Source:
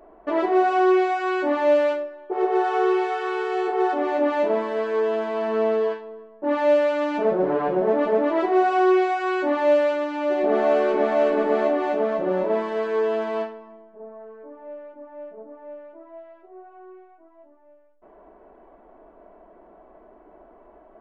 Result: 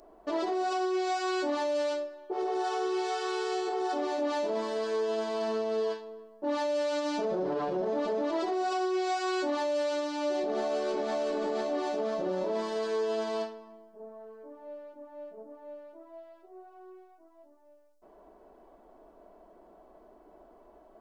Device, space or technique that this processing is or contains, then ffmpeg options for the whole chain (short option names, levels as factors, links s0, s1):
over-bright horn tweeter: -af "highshelf=f=3300:t=q:w=1.5:g=13.5,alimiter=limit=0.126:level=0:latency=1:release=24,volume=0.531"